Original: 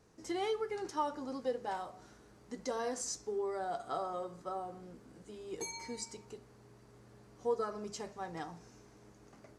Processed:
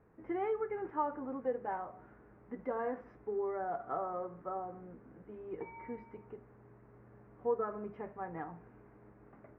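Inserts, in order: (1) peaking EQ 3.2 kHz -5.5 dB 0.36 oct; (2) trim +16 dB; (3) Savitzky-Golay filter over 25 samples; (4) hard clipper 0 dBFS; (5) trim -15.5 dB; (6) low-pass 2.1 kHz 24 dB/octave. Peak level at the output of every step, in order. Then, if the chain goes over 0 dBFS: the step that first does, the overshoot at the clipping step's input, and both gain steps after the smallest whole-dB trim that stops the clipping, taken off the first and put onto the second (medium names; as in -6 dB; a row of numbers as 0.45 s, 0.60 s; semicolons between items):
-22.0 dBFS, -6.0 dBFS, -6.0 dBFS, -6.0 dBFS, -21.5 dBFS, -21.5 dBFS; nothing clips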